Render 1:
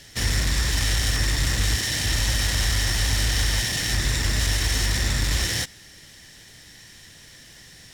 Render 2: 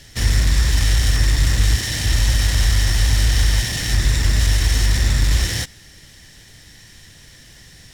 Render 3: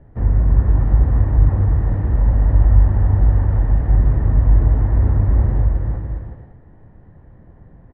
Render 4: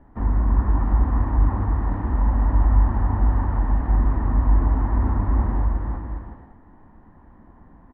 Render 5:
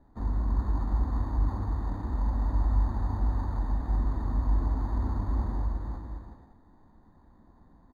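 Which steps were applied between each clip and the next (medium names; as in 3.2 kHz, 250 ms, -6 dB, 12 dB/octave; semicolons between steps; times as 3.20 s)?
bass shelf 120 Hz +9 dB; trim +1 dB
low-pass 1 kHz 24 dB/octave; on a send: bouncing-ball echo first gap 320 ms, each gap 0.7×, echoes 5; on the sum: trim +1.5 dB
graphic EQ 125/250/500/1000 Hz -11/+9/-7/+12 dB; trim -3.5 dB
decimation joined by straight lines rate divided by 8×; trim -8.5 dB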